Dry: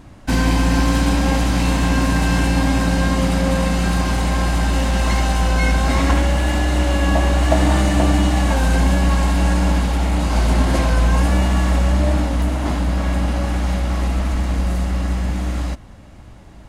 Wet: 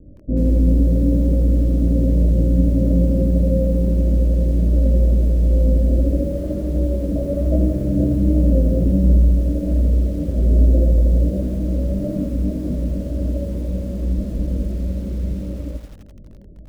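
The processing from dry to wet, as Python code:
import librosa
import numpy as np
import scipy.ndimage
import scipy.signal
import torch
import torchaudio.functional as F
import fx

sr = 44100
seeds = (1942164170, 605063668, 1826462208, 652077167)

y = scipy.signal.sosfilt(scipy.signal.butter(16, 610.0, 'lowpass', fs=sr, output='sos'), x)
y = fx.chorus_voices(y, sr, voices=4, hz=1.3, base_ms=22, depth_ms=3.0, mix_pct=45)
y = fx.echo_crushed(y, sr, ms=85, feedback_pct=55, bits=7, wet_db=-10.0)
y = F.gain(torch.from_numpy(y), 2.0).numpy()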